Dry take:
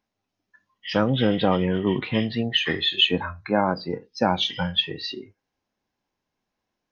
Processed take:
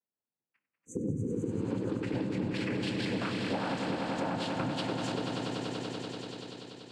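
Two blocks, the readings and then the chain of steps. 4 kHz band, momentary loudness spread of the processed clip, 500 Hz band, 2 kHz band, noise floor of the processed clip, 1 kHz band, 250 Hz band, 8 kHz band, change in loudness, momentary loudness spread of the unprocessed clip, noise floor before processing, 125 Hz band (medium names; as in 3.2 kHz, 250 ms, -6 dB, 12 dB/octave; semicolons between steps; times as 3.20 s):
-17.0 dB, 8 LU, -9.5 dB, -10.0 dB, under -85 dBFS, -9.5 dB, -7.0 dB, no reading, -11.0 dB, 11 LU, -83 dBFS, -7.0 dB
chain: partial rectifier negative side -7 dB; treble shelf 2.6 kHz -11.5 dB; in parallel at -8 dB: small samples zeroed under -35 dBFS; on the sum: gate -47 dBFS, range -15 dB; peak limiter -19.5 dBFS, peak gain reduction 10 dB; noise-vocoded speech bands 8; spectral replace 0.71–1.71 s, 530–5900 Hz both; on a send: echo with a slow build-up 96 ms, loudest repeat 5, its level -9 dB; on the sum: dynamic bell 4 kHz, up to -6 dB, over -47 dBFS, Q 1.7; compression, threshold -29 dBFS, peak gain reduction 8.5 dB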